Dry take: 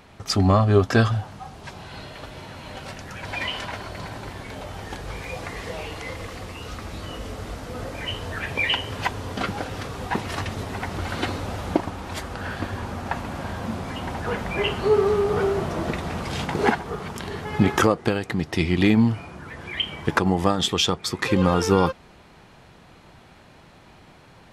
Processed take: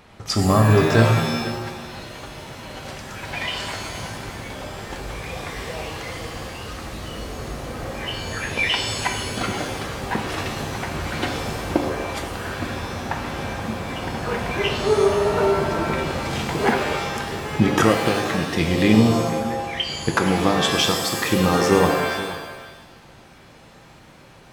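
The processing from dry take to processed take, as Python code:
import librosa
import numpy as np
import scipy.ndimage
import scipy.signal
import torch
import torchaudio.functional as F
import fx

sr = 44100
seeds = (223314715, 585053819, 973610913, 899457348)

y = x + 10.0 ** (-15.5 / 20.0) * np.pad(x, (int(478 * sr / 1000.0), 0))[:len(x)]
y = fx.rev_shimmer(y, sr, seeds[0], rt60_s=1.0, semitones=7, shimmer_db=-2, drr_db=4.5)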